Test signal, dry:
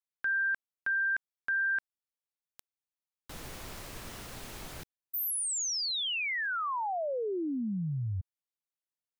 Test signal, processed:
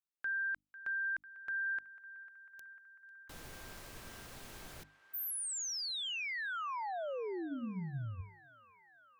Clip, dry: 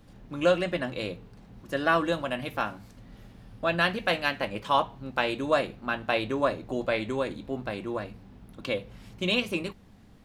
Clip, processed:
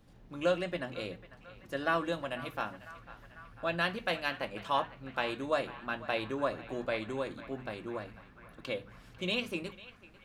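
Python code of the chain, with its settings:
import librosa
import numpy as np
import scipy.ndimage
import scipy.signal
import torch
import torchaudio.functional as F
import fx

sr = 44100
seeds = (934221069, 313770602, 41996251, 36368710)

p1 = fx.hum_notches(x, sr, base_hz=50, count=6)
p2 = p1 + fx.echo_banded(p1, sr, ms=497, feedback_pct=75, hz=1500.0, wet_db=-15, dry=0)
y = p2 * 10.0 ** (-6.5 / 20.0)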